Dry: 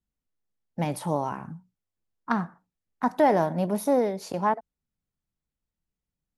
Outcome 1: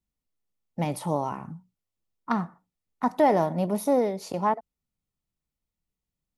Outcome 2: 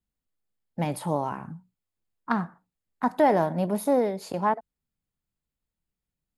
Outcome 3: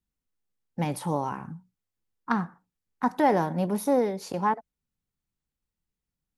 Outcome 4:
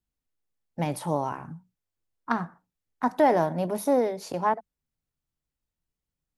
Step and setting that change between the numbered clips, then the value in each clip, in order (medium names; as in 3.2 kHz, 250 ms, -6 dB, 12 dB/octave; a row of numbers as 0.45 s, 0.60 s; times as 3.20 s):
band-stop, frequency: 1.6 kHz, 5.8 kHz, 640 Hz, 200 Hz